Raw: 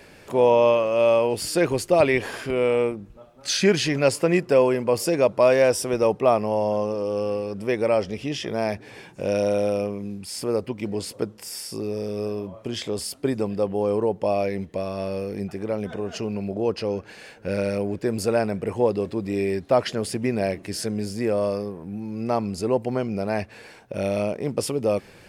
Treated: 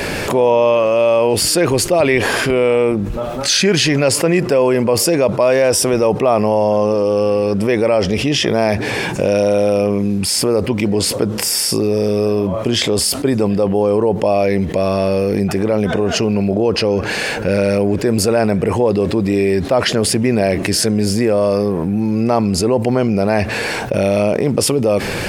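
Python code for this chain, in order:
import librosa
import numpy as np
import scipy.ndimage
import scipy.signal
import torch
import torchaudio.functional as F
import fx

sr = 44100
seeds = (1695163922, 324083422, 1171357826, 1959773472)

y = fx.env_flatten(x, sr, amount_pct=70)
y = y * librosa.db_to_amplitude(2.5)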